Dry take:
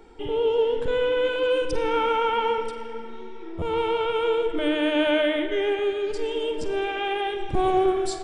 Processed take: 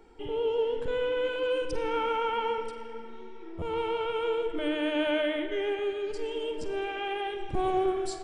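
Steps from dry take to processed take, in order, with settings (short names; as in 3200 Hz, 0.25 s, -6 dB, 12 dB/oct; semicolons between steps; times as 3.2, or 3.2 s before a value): notch 3600 Hz, Q 17; gain -6 dB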